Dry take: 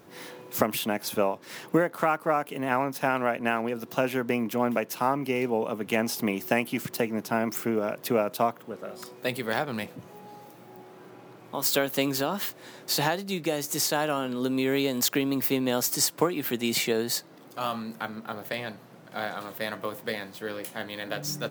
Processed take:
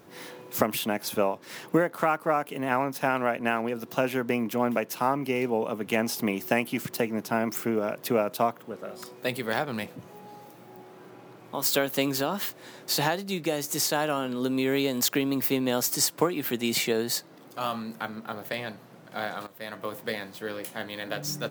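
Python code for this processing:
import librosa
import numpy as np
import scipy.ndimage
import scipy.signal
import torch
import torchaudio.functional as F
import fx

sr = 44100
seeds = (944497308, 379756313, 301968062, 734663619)

y = fx.edit(x, sr, fx.fade_in_from(start_s=19.47, length_s=0.47, floor_db=-15.0), tone=tone)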